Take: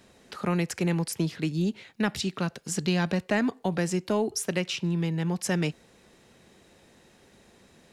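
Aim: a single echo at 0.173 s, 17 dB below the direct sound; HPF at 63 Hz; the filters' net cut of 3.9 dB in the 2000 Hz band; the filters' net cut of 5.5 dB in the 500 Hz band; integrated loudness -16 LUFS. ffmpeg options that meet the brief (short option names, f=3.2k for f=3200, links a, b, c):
-af "highpass=63,equalizer=f=500:t=o:g=-7.5,equalizer=f=2k:t=o:g=-4.5,aecho=1:1:173:0.141,volume=14dB"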